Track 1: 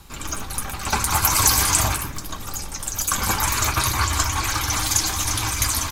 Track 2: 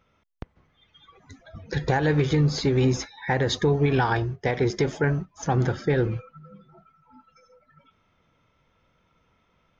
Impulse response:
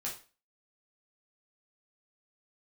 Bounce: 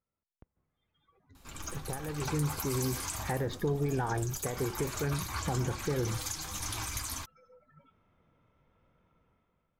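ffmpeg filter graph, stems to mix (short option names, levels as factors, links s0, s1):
-filter_complex "[0:a]adelay=1350,volume=0.237[s0];[1:a]lowpass=f=1100:p=1,dynaudnorm=f=190:g=7:m=3.55,volume=0.237,afade=t=in:st=2.21:d=0.21:silence=0.281838[s1];[s0][s1]amix=inputs=2:normalize=0,alimiter=limit=0.075:level=0:latency=1:release=451"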